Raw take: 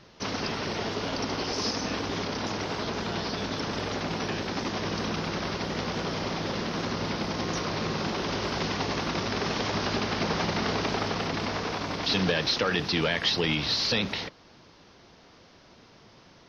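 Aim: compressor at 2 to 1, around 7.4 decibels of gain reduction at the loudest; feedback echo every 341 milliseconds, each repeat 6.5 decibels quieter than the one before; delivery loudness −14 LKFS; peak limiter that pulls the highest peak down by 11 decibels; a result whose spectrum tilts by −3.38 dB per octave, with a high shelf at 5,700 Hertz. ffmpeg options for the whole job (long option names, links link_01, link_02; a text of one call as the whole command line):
ffmpeg -i in.wav -af "highshelf=frequency=5700:gain=-5.5,acompressor=threshold=-36dB:ratio=2,alimiter=level_in=7.5dB:limit=-24dB:level=0:latency=1,volume=-7.5dB,aecho=1:1:341|682|1023|1364|1705|2046:0.473|0.222|0.105|0.0491|0.0231|0.0109,volume=25dB" out.wav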